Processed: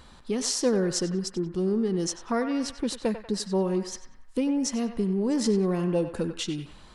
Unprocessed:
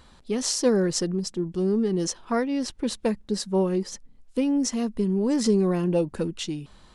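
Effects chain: in parallel at +2 dB: compression, threshold -32 dBFS, peak gain reduction 15 dB; on the sum: band-passed feedback delay 94 ms, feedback 61%, band-pass 1.4 kHz, level -7 dB; trim -5 dB

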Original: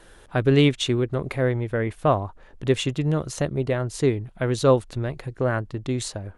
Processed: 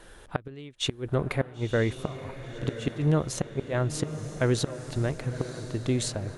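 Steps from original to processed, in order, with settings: inverted gate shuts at -13 dBFS, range -26 dB; echo that smears into a reverb 993 ms, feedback 50%, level -11 dB

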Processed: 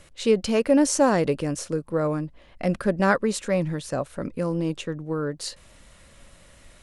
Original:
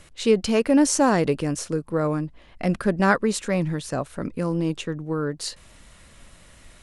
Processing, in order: peaking EQ 550 Hz +5.5 dB 0.27 oct; trim -2 dB

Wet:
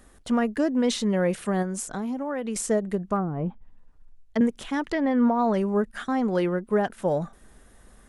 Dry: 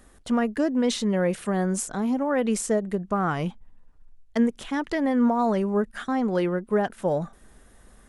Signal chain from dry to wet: 1.62–2.56 s: compression 5:1, threshold -27 dBFS, peak gain reduction 7.5 dB; 3.16–4.41 s: low-pass that closes with the level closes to 380 Hz, closed at -20.5 dBFS; 4.92–5.54 s: low-pass 4.5 kHz 12 dB/octave

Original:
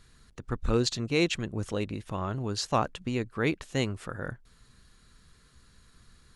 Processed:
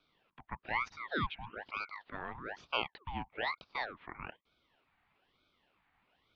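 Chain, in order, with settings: spectral replace 0.93–1.54 s, 480–2300 Hz before; mistuned SSB +170 Hz 210–2800 Hz; ring modulator with a swept carrier 1.1 kHz, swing 70%, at 1.1 Hz; trim -5 dB

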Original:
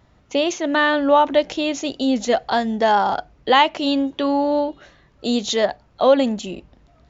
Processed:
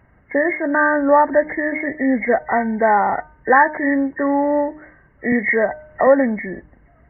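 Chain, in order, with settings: knee-point frequency compression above 1.5 kHz 4:1; de-hum 305.5 Hz, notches 5; 5.32–6.07 s: three bands compressed up and down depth 70%; trim +1.5 dB

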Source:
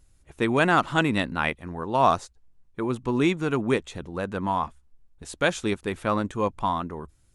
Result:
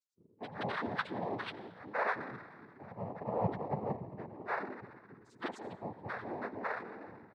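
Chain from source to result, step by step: bands offset in time highs, lows 170 ms, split 480 Hz; loudest bins only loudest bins 2; ring modulator 220 Hz; on a send at -12 dB: reverberation RT60 1.8 s, pre-delay 77 ms; on the sum: noise-vocoded speech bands 6; trim -2.5 dB

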